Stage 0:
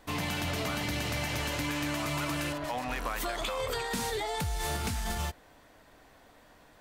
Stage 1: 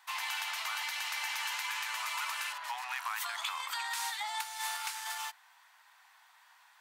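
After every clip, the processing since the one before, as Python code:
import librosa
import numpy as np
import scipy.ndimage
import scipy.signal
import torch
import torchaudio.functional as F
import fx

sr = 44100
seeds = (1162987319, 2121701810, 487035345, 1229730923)

y = scipy.signal.sosfilt(scipy.signal.ellip(4, 1.0, 50, 870.0, 'highpass', fs=sr, output='sos'), x)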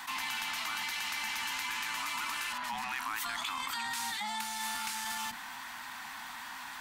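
y = fx.octave_divider(x, sr, octaves=2, level_db=4.0)
y = fx.low_shelf(y, sr, hz=160.0, db=9.0)
y = fx.env_flatten(y, sr, amount_pct=70)
y = y * librosa.db_to_amplitude(-2.0)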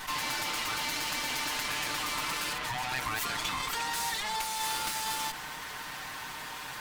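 y = fx.lower_of_two(x, sr, delay_ms=6.6)
y = y * librosa.db_to_amplitude(5.0)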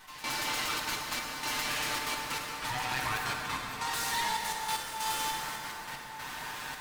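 y = fx.step_gate(x, sr, bpm=189, pattern='...xxxxxxx.x..x', floor_db=-12.0, edge_ms=4.5)
y = fx.rev_plate(y, sr, seeds[0], rt60_s=4.7, hf_ratio=0.55, predelay_ms=0, drr_db=0.0)
y = y * librosa.db_to_amplitude(-1.5)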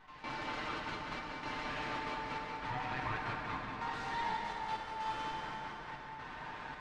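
y = fx.spacing_loss(x, sr, db_at_10k=35)
y = fx.echo_feedback(y, sr, ms=188, feedback_pct=58, wet_db=-8)
y = y * librosa.db_to_amplitude(-1.0)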